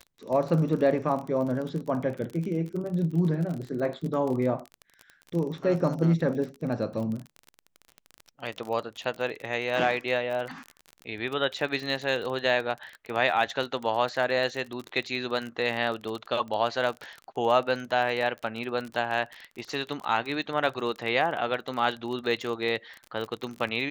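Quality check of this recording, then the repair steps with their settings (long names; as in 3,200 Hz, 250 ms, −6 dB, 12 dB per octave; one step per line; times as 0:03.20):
surface crackle 32 per second −32 dBFS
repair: click removal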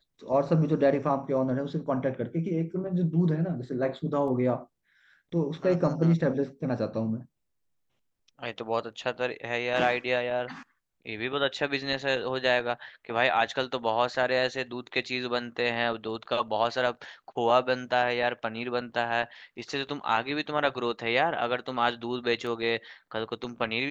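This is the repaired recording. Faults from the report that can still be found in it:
none of them is left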